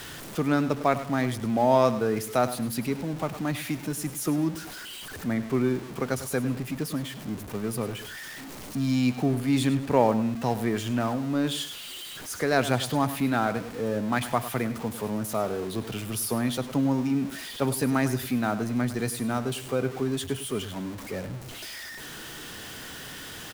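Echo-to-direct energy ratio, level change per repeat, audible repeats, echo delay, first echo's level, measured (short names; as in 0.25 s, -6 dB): -13.0 dB, -10.0 dB, 2, 0.102 s, -13.5 dB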